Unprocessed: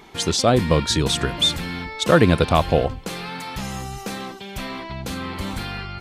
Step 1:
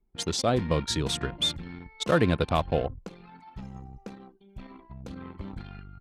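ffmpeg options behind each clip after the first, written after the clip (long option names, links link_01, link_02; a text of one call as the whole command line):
ffmpeg -i in.wav -af "anlmdn=251,volume=-8dB" out.wav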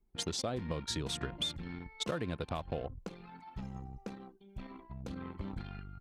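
ffmpeg -i in.wav -af "alimiter=limit=-14.5dB:level=0:latency=1:release=271,acompressor=threshold=-31dB:ratio=6,volume=-2dB" out.wav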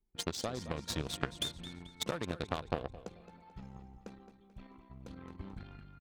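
ffmpeg -i in.wav -filter_complex "[0:a]asplit=2[link_01][link_02];[link_02]aecho=0:1:218|436|654|872|1090:0.335|0.144|0.0619|0.0266|0.0115[link_03];[link_01][link_03]amix=inputs=2:normalize=0,aeval=exprs='0.0944*(cos(1*acos(clip(val(0)/0.0944,-1,1)))-cos(1*PI/2))+0.0266*(cos(3*acos(clip(val(0)/0.0944,-1,1)))-cos(3*PI/2))':channel_layout=same,volume=8.5dB" out.wav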